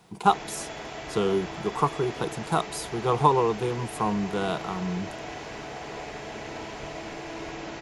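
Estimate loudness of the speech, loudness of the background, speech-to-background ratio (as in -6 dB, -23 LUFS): -27.5 LUFS, -37.5 LUFS, 10.0 dB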